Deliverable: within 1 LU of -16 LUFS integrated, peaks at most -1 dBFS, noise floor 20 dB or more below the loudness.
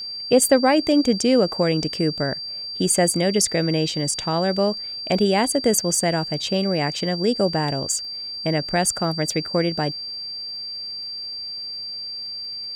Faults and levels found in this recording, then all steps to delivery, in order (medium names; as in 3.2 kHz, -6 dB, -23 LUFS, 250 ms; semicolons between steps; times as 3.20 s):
tick rate 29 per s; steady tone 4.7 kHz; tone level -29 dBFS; loudness -21.5 LUFS; peak level -3.0 dBFS; loudness target -16.0 LUFS
-> de-click; band-stop 4.7 kHz, Q 30; trim +5.5 dB; peak limiter -1 dBFS